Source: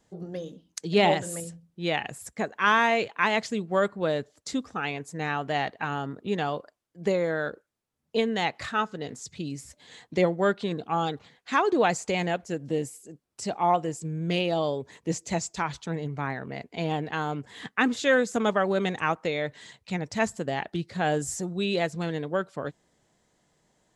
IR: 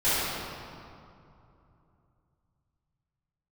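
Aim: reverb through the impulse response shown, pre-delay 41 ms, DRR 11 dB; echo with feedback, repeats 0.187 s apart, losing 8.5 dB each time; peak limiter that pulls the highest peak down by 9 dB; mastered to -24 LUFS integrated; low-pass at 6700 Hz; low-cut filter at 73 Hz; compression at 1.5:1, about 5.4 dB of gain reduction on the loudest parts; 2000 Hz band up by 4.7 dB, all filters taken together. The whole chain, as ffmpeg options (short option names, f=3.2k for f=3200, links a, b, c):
-filter_complex "[0:a]highpass=73,lowpass=6.7k,equalizer=f=2k:t=o:g=6,acompressor=threshold=-29dB:ratio=1.5,alimiter=limit=-19dB:level=0:latency=1,aecho=1:1:187|374|561|748:0.376|0.143|0.0543|0.0206,asplit=2[a][b];[1:a]atrim=start_sample=2205,adelay=41[c];[b][c]afir=irnorm=-1:irlink=0,volume=-26.5dB[d];[a][d]amix=inputs=2:normalize=0,volume=7.5dB"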